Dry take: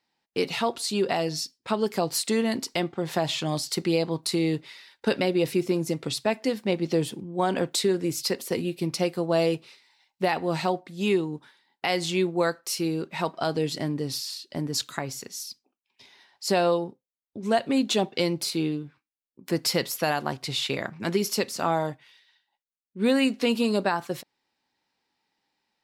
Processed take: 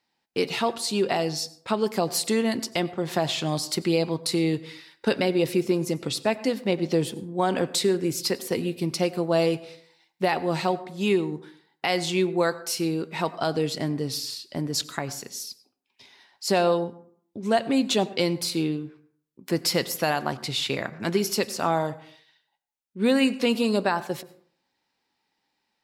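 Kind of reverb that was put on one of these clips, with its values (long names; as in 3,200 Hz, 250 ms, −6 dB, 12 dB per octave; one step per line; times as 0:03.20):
dense smooth reverb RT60 0.58 s, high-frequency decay 0.45×, pre-delay 80 ms, DRR 17 dB
level +1 dB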